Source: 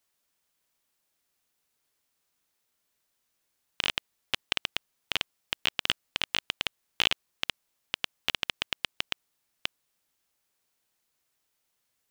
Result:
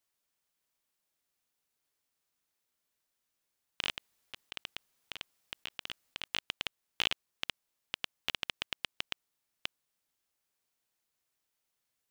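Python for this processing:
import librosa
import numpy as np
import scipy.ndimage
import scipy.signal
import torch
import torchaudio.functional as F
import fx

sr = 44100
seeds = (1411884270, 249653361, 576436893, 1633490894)

y = fx.over_compress(x, sr, threshold_db=-36.0, ratio=-1.0, at=(3.9, 6.28))
y = y * librosa.db_to_amplitude(-6.0)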